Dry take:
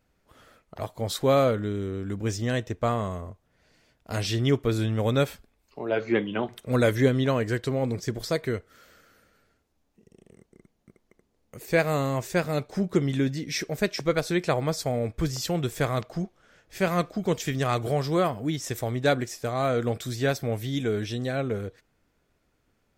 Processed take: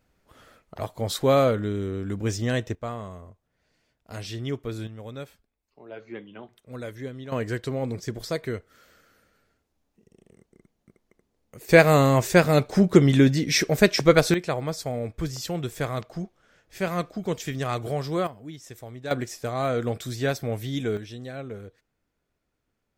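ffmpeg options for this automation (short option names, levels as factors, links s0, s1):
-af "asetnsamples=n=441:p=0,asendcmd='2.75 volume volume -7.5dB;4.87 volume volume -14.5dB;7.32 volume volume -2dB;11.69 volume volume 8dB;14.34 volume volume -2.5dB;18.27 volume volume -11.5dB;19.11 volume volume -0.5dB;20.97 volume volume -8dB',volume=1.19"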